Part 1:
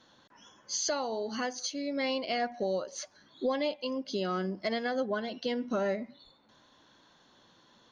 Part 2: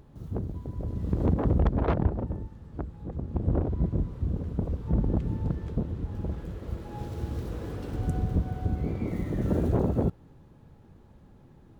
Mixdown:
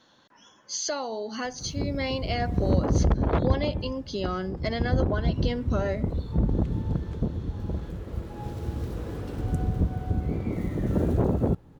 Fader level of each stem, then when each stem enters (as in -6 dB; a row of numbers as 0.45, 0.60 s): +1.5, +1.5 dB; 0.00, 1.45 s